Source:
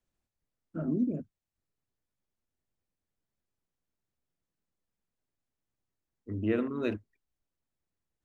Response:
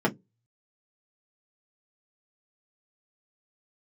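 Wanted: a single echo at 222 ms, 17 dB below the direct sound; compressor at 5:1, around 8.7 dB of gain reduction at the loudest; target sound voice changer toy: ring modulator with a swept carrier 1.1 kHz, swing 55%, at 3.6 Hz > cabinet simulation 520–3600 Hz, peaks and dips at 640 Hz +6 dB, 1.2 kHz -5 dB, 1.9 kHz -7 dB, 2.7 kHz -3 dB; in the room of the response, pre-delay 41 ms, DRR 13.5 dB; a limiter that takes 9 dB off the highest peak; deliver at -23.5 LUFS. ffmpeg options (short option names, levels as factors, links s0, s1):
-filter_complex "[0:a]acompressor=threshold=0.0224:ratio=5,alimiter=level_in=2.51:limit=0.0631:level=0:latency=1,volume=0.398,aecho=1:1:222:0.141,asplit=2[s0][s1];[1:a]atrim=start_sample=2205,adelay=41[s2];[s1][s2]afir=irnorm=-1:irlink=0,volume=0.0501[s3];[s0][s3]amix=inputs=2:normalize=0,aeval=exprs='val(0)*sin(2*PI*1100*n/s+1100*0.55/3.6*sin(2*PI*3.6*n/s))':c=same,highpass=520,equalizer=f=640:t=q:w=4:g=6,equalizer=f=1200:t=q:w=4:g=-5,equalizer=f=1900:t=q:w=4:g=-7,equalizer=f=2700:t=q:w=4:g=-3,lowpass=f=3600:w=0.5412,lowpass=f=3600:w=1.3066,volume=13.3"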